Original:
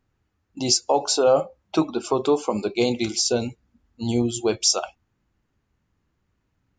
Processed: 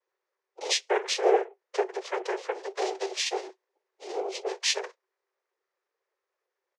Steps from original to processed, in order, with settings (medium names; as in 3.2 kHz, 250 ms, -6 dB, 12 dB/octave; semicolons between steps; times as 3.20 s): comb 3.5 ms, depth 64%; noise-vocoded speech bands 4; rippled Chebyshev high-pass 370 Hz, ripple 3 dB; formant shift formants -4 st; trim -5 dB; Vorbis 128 kbps 32 kHz